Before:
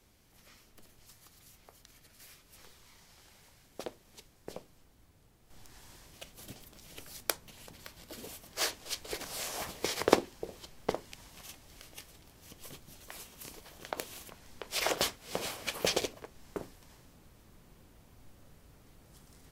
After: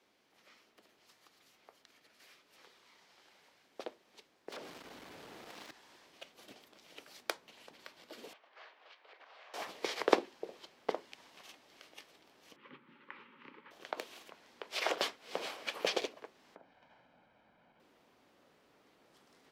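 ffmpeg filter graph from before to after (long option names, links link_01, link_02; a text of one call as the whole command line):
ffmpeg -i in.wav -filter_complex "[0:a]asettb=1/sr,asplit=3[link_01][link_02][link_03];[link_01]atrim=end=4.524[link_04];[link_02]atrim=start=4.52:end=5.71,asetpts=PTS-STARTPTS,afade=type=in:duration=0.004:curve=qsin,afade=type=out:start_time=1.186:duration=0.004:curve=qsin,acompressor=threshold=-54dB:ratio=3:attack=3.2:release=140:knee=1:detection=peak,aeval=exprs='0.0133*sin(PI/2*8.91*val(0)/0.0133)':channel_layout=same[link_05];[link_03]atrim=start=5.706[link_06];[link_04][link_05]acrossfade=duration=0.004:curve1=hsin:curve2=qsin[link_07];[link_07][link_06]acrossfade=duration=0.004:curve1=qsin:curve2=hsin,asettb=1/sr,asplit=3[link_08][link_09][link_10];[link_08]atrim=end=8.334[link_11];[link_09]atrim=start=8.33:end=9.54,asetpts=PTS-STARTPTS,afade=type=in:duration=0.004:curve=qsin,afade=type=out:start_time=1.206:duration=0.004:curve=qsin,aemphasis=mode=reproduction:type=75fm,acompressor=threshold=-48dB:ratio=5:attack=3.2:release=140:knee=1:detection=peak,highpass=740,lowpass=3300[link_12];[link_10]atrim=start=9.536[link_13];[link_11][link_12]acrossfade=duration=0.004:curve1=hsin:curve2=qsin[link_14];[link_14][link_13]acrossfade=duration=0.004:curve1=qsin:curve2=hsin,asettb=1/sr,asplit=3[link_15][link_16][link_17];[link_15]atrim=end=12.564[link_18];[link_16]atrim=start=12.56:end=13.71,asetpts=PTS-STARTPTS,afade=type=in:duration=0.004:curve=qsin,afade=type=out:start_time=1.146:duration=0.004:curve=qsin,asuperstop=centerf=690:order=12:qfactor=2.7,highpass=frequency=130:width=0.5412,highpass=frequency=130:width=1.3066,equalizer=frequency=140:width_type=q:width=4:gain=8,equalizer=frequency=240:width_type=q:width=4:gain=8,equalizer=frequency=480:width_type=q:width=4:gain=-6,equalizer=frequency=720:width_type=q:width=4:gain=5,equalizer=frequency=1300:width_type=q:width=4:gain=5,equalizer=frequency=2000:width_type=q:width=4:gain=3,lowpass=frequency=2700:width=0.5412,lowpass=frequency=2700:width=1.3066[link_19];[link_17]atrim=start=13.706[link_20];[link_18][link_19]acrossfade=duration=0.004:curve1=hsin:curve2=qsin[link_21];[link_21][link_20]acrossfade=duration=0.004:curve1=qsin:curve2=hsin,asettb=1/sr,asplit=3[link_22][link_23][link_24];[link_22]atrim=end=16.554[link_25];[link_23]atrim=start=16.55:end=17.8,asetpts=PTS-STARTPTS,afade=type=in:duration=0.004:curve=qsin,afade=type=out:start_time=1.246:duration=0.004:curve=qsin,lowpass=2500,aecho=1:1:1.3:0.65,atrim=end_sample=55125,acompressor=threshold=-50dB:ratio=5:attack=3.2:release=140:knee=1:detection=peak[link_26];[link_24]atrim=start=17.796[link_27];[link_25][link_26]acrossfade=duration=0.004:curve1=hsin:curve2=qsin[link_28];[link_28][link_27]acrossfade=duration=0.004:curve1=qsin:curve2=hsin,highpass=frequency=180:poles=1,acrossover=split=230 4900:gain=0.126 1 0.178[link_29][link_30][link_31];[link_29][link_30][link_31]amix=inputs=3:normalize=0,volume=-1.5dB" out.wav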